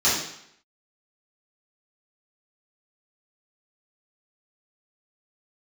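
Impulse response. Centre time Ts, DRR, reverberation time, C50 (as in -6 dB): 55 ms, -12.0 dB, 0.70 s, 2.0 dB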